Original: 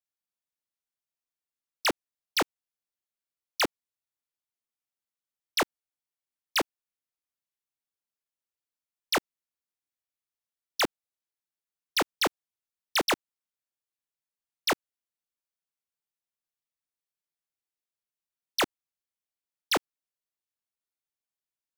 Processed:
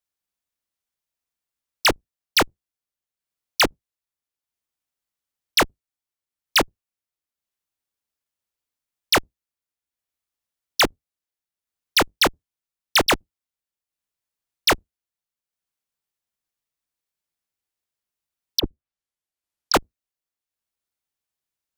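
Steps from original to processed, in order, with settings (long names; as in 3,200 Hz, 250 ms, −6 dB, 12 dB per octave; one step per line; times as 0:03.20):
sub-octave generator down 2 octaves, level −1 dB
0:18.59–0:19.74: treble cut that deepens with the level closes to 370 Hz, closed at −26 dBFS
transient designer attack +5 dB, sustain −4 dB
level +5 dB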